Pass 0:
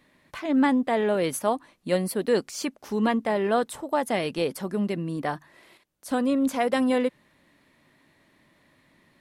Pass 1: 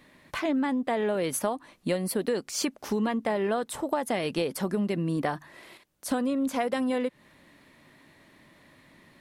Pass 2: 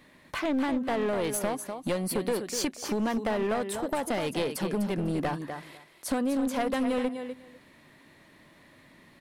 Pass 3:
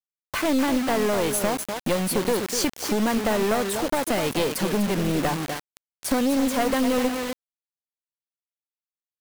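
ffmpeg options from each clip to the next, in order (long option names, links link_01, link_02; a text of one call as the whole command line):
ffmpeg -i in.wav -af "acompressor=threshold=-29dB:ratio=12,volume=5dB" out.wav
ffmpeg -i in.wav -af "aecho=1:1:249|498:0.355|0.0568,aeval=exprs='clip(val(0),-1,0.0447)':channel_layout=same" out.wav
ffmpeg -i in.wav -af "acrusher=bits=5:mix=0:aa=0.000001,volume=6dB" out.wav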